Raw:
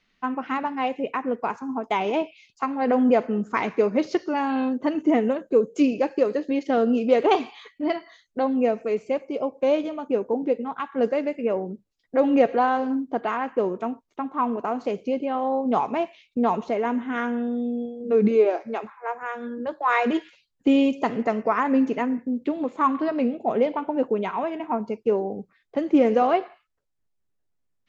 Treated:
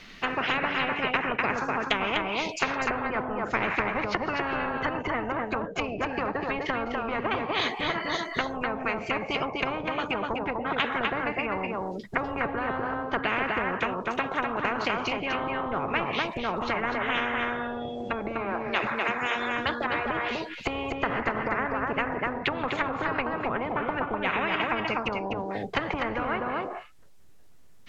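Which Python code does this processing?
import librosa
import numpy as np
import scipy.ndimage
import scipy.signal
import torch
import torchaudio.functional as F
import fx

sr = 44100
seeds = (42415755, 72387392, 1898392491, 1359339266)

y = fx.env_lowpass_down(x, sr, base_hz=630.0, full_db=-19.0)
y = y + 10.0 ** (-7.0 / 20.0) * np.pad(y, (int(249 * sr / 1000.0), 0))[:len(y)]
y = fx.spectral_comp(y, sr, ratio=10.0)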